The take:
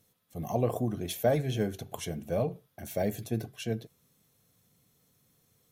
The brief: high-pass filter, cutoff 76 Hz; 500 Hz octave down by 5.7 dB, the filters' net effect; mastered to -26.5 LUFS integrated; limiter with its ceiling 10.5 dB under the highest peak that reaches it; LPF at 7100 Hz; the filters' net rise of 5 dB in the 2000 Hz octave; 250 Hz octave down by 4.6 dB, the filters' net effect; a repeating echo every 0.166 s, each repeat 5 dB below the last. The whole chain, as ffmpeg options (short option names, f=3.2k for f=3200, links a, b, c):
-af "highpass=76,lowpass=7.1k,equalizer=f=250:t=o:g=-4.5,equalizer=f=500:t=o:g=-6.5,equalizer=f=2k:t=o:g=7,alimiter=level_in=4dB:limit=-24dB:level=0:latency=1,volume=-4dB,aecho=1:1:166|332|498|664|830|996|1162:0.562|0.315|0.176|0.0988|0.0553|0.031|0.0173,volume=11.5dB"